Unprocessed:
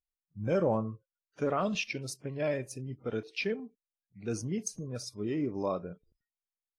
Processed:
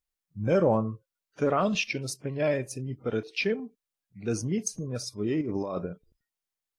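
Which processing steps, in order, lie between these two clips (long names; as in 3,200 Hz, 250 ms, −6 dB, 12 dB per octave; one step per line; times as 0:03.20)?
0:05.41–0:05.86: compressor whose output falls as the input rises −36 dBFS, ratio −1
level +5 dB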